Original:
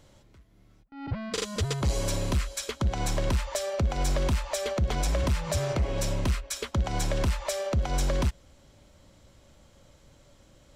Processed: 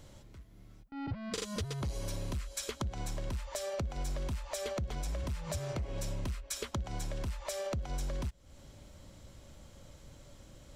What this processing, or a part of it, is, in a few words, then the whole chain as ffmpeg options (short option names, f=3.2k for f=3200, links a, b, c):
ASMR close-microphone chain: -filter_complex "[0:a]asettb=1/sr,asplit=3[a][b][c];[a]atrim=end=1.534[d];[b]atrim=start=1.53:end=2.31,asetpts=PTS-STARTPTS,afade=t=in:d=0.004:c=qsin,afade=t=out:st=0.776:d=0.004:c=qsin,bandreject=f=7.5k:w=6.5[e];[c]atrim=start=2.306[f];[d][e]acrossfade=d=0.004:c1=hsin:c2=qsin[g];[g][f]acrossfade=d=0.004:c1=qsin:c2=hsin,lowshelf=f=230:g=4.5,acompressor=threshold=-35dB:ratio=6,highshelf=f=6.7k:g=4.5"